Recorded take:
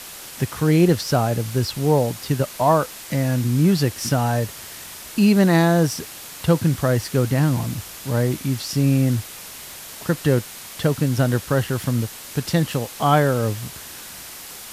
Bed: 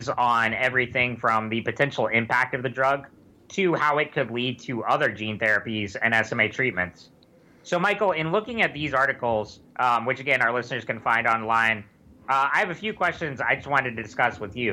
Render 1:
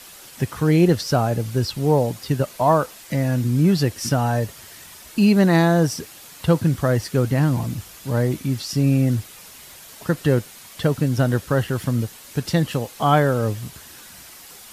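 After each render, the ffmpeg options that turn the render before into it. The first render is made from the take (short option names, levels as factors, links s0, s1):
-af "afftdn=nr=7:nf=-38"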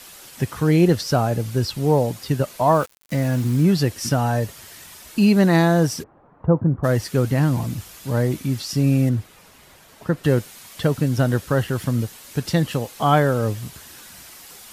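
-filter_complex "[0:a]asettb=1/sr,asplit=3[s0][s1][s2];[s0]atrim=end=2.744[s3];[s1]atrim=start=2.74:end=3.65,asetpts=PTS-STARTPTS,afade=t=in:d=0.004:c=qsin,afade=t=out:st=0.906:d=0.004:c=qsin,aeval=exprs='val(0)*gte(abs(val(0)),0.0224)':c=same[s4];[s2]atrim=start=3.646[s5];[s3][s4]acrossfade=d=0.004:c1=hsin:c2=qsin[s6];[s6][s5]acrossfade=d=0.004:c1=qsin:c2=hsin,asplit=3[s7][s8][s9];[s7]afade=t=out:st=6.02:d=0.02[s10];[s8]lowpass=f=1100:w=0.5412,lowpass=f=1100:w=1.3066,afade=t=in:st=6.02:d=0.02,afade=t=out:st=6.83:d=0.02[s11];[s9]afade=t=in:st=6.83:d=0.02[s12];[s10][s11][s12]amix=inputs=3:normalize=0,asettb=1/sr,asplit=3[s13][s14][s15];[s13]atrim=end=9.094[s16];[s14]atrim=start=9.09:end=10.24,asetpts=PTS-STARTPTS,afade=t=in:d=0.004:c=qsin,afade=t=out:st=1.146:d=0.004:c=qsin,highshelf=f=2800:g=-11.5[s17];[s15]atrim=start=10.236[s18];[s16][s17]acrossfade=d=0.004:c1=hsin:c2=qsin[s19];[s19][s18]acrossfade=d=0.004:c1=qsin:c2=hsin"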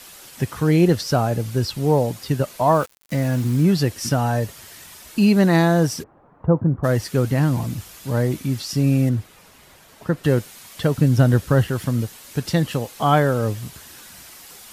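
-filter_complex "[0:a]asettb=1/sr,asplit=3[s0][s1][s2];[s0]atrim=end=10.974[s3];[s1]atrim=start=10.97:end=11.68,asetpts=PTS-STARTPTS,afade=t=in:d=0.004:c=qsin,afade=t=out:st=0.706:d=0.004:c=qsin,lowshelf=f=220:g=7[s4];[s2]atrim=start=11.676[s5];[s3][s4]acrossfade=d=0.004:c1=hsin:c2=qsin[s6];[s6][s5]acrossfade=d=0.004:c1=qsin:c2=hsin"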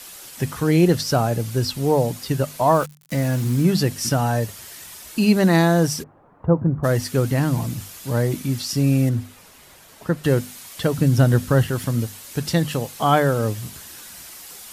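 -af "equalizer=f=11000:t=o:w=2:g=4,bandreject=f=50:t=h:w=6,bandreject=f=100:t=h:w=6,bandreject=f=150:t=h:w=6,bandreject=f=200:t=h:w=6,bandreject=f=250:t=h:w=6"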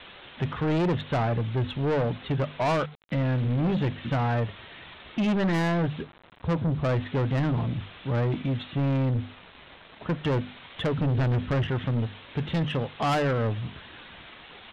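-af "aresample=8000,acrusher=bits=7:mix=0:aa=0.000001,aresample=44100,asoftclip=type=tanh:threshold=0.0841"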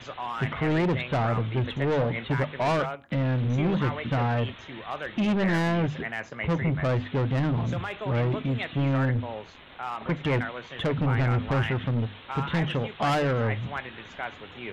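-filter_complex "[1:a]volume=0.237[s0];[0:a][s0]amix=inputs=2:normalize=0"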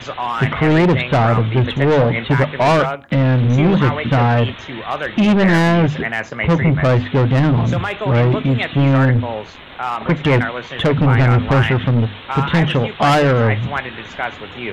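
-af "volume=3.76"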